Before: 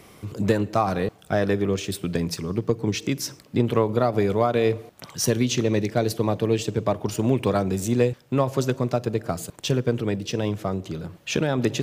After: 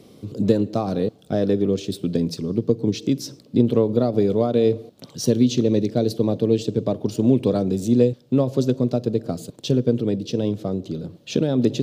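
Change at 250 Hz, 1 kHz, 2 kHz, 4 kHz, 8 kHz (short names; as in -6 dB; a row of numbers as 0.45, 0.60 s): +5.0, -6.0, -10.0, -1.5, -5.0 dB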